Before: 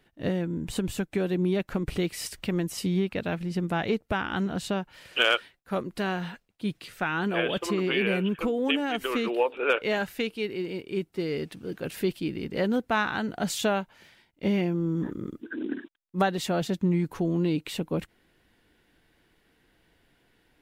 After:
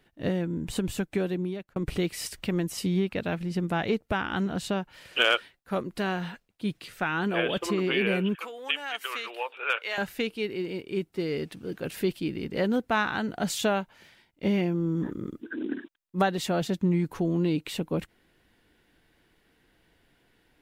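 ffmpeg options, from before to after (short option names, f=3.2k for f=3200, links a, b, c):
-filter_complex "[0:a]asettb=1/sr,asplit=3[a][b][c];[a]atrim=end=8.354[d];[b]atrim=start=8.35:end=9.98,asetpts=PTS-STARTPTS,afade=t=in:d=0.004:c=qsin,afade=t=out:st=1.626:d=0.004:c=qsin,highpass=1k[e];[c]atrim=start=9.976[f];[d][e]acrossfade=d=0.004:c1=hsin:c2=qsin[g];[g][f]acrossfade=d=0.004:c1=qsin:c2=hsin,asplit=2[h][i];[h]atrim=end=1.76,asetpts=PTS-STARTPTS,afade=t=out:st=1.18:d=0.58[j];[i]atrim=start=1.76,asetpts=PTS-STARTPTS,afade=t=in:d=0.004:c=hsin[k];[j][k]concat=n=2:v=0:a=1"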